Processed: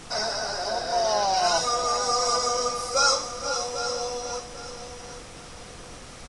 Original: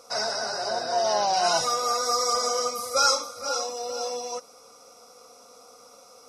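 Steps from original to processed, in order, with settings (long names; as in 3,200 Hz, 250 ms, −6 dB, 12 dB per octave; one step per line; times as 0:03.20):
repeating echo 794 ms, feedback 27%, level −11 dB
background noise pink −43 dBFS
Ogg Vorbis 64 kbit/s 22,050 Hz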